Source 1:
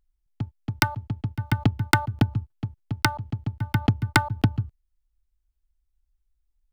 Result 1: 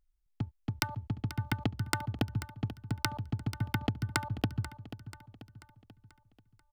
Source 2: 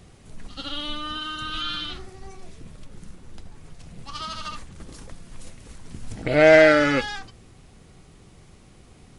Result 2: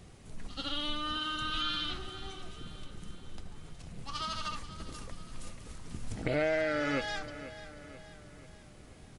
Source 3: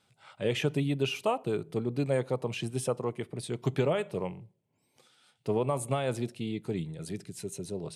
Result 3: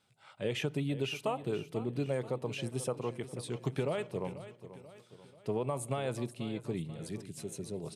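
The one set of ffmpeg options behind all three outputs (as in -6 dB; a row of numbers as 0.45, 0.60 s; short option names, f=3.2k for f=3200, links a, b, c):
-af "acompressor=threshold=-24dB:ratio=8,aecho=1:1:487|974|1461|1948|2435:0.2|0.0978|0.0479|0.0235|0.0115,volume=-3.5dB"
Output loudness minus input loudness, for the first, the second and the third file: -9.5, -14.5, -4.5 LU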